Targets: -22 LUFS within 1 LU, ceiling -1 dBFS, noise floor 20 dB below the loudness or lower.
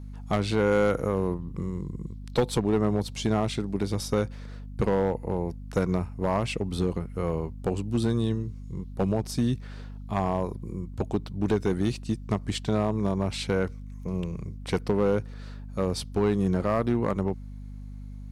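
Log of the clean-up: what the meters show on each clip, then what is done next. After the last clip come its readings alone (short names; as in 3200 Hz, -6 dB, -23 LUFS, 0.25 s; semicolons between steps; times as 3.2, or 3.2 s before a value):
clipped 0.9%; flat tops at -16.5 dBFS; hum 50 Hz; harmonics up to 250 Hz; hum level -37 dBFS; loudness -28.5 LUFS; peak -16.5 dBFS; loudness target -22.0 LUFS
-> clip repair -16.5 dBFS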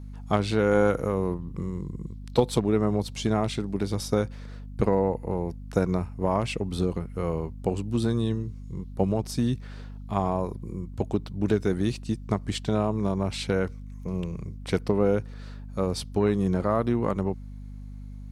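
clipped 0.0%; hum 50 Hz; harmonics up to 250 Hz; hum level -37 dBFS
-> notches 50/100/150/200/250 Hz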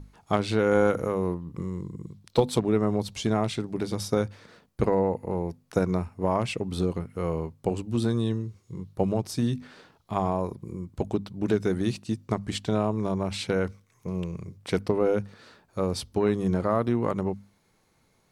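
hum none; loudness -28.0 LUFS; peak -7.5 dBFS; loudness target -22.0 LUFS
-> gain +6 dB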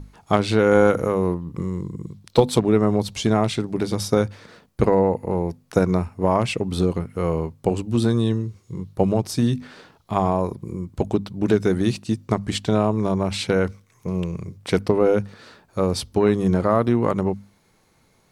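loudness -22.0 LUFS; peak -1.5 dBFS; noise floor -61 dBFS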